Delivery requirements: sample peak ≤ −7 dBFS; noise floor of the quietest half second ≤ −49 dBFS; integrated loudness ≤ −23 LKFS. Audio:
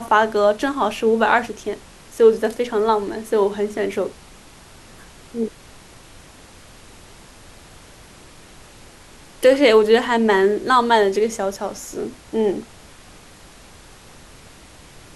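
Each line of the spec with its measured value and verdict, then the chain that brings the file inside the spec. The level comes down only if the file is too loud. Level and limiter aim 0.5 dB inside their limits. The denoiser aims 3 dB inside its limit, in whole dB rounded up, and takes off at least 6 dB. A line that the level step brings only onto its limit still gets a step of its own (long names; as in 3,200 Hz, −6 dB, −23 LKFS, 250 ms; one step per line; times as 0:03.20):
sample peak −3.0 dBFS: out of spec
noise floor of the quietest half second −44 dBFS: out of spec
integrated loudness −19.0 LKFS: out of spec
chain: broadband denoise 6 dB, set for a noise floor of −44 dBFS
level −4.5 dB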